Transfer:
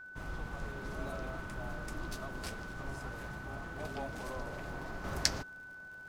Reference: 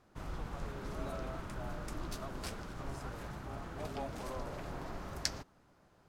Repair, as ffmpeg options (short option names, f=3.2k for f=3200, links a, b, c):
-af "adeclick=t=4,bandreject=f=1.5k:w=30,asetnsamples=n=441:p=0,asendcmd='5.04 volume volume -5.5dB',volume=0dB"